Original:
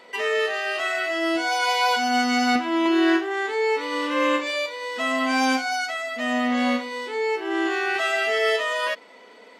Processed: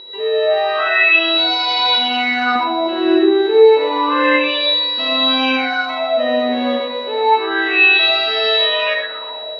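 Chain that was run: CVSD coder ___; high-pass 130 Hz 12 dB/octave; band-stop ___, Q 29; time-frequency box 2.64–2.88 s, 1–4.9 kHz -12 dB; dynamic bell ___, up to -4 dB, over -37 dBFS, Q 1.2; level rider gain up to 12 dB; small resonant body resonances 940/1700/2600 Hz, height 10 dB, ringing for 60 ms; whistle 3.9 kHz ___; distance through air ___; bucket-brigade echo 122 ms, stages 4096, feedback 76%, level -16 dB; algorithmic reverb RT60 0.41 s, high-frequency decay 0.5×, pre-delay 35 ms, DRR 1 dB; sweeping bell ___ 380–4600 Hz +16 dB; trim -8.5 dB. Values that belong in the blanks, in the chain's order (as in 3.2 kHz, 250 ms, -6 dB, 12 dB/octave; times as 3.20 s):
64 kbps, 2.3 kHz, 1.6 kHz, -17 dBFS, 310 m, 0.3 Hz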